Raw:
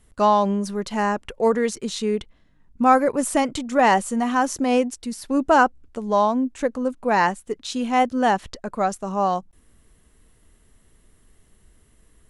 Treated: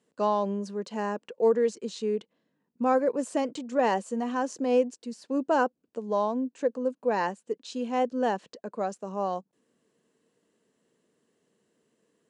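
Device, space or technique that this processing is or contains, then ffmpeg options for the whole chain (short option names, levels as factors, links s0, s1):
television speaker: -af "highpass=f=180:w=0.5412,highpass=f=180:w=1.3066,equalizer=f=480:t=q:w=4:g=7,equalizer=f=790:t=q:w=4:g=-3,equalizer=f=1300:t=q:w=4:g=-6,equalizer=f=2100:t=q:w=4:g=-7,equalizer=f=3500:t=q:w=4:g=-5,equalizer=f=5700:t=q:w=4:g=-4,lowpass=f=7300:w=0.5412,lowpass=f=7300:w=1.3066,volume=0.422"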